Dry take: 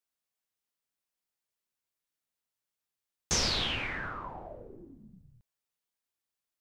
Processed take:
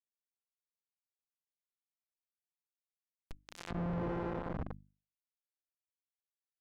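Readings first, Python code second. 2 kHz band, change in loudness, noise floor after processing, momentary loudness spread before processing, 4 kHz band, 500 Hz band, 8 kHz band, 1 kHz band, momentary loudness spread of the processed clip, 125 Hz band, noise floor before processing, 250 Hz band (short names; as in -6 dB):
-15.0 dB, -8.5 dB, under -85 dBFS, 20 LU, -26.0 dB, +0.5 dB, -27.5 dB, -5.0 dB, 17 LU, +1.5 dB, under -85 dBFS, +3.5 dB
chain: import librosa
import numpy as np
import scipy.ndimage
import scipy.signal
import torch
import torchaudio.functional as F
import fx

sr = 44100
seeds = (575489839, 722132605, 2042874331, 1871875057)

y = np.r_[np.sort(x[:len(x) // 256 * 256].reshape(-1, 256), axis=1).ravel(), x[len(x) // 256 * 256:]]
y = fx.high_shelf(y, sr, hz=4400.0, db=2.5)
y = fx.over_compress(y, sr, threshold_db=-36.0, ratio=-0.5)
y = scipy.signal.sosfilt(scipy.signal.butter(2, 59.0, 'highpass', fs=sr, output='sos'), y)
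y = fx.peak_eq(y, sr, hz=11000.0, db=-7.0, octaves=0.27)
y = y + 10.0 ** (-7.0 / 20.0) * np.pad(y, (int(236 * sr / 1000.0), 0))[:len(y)]
y = fx.schmitt(y, sr, flips_db=-39.0)
y = fx.hum_notches(y, sr, base_hz=50, count=6)
y = fx.env_lowpass_down(y, sr, base_hz=1300.0, full_db=-48.5)
y = F.gain(torch.from_numpy(y), 9.5).numpy()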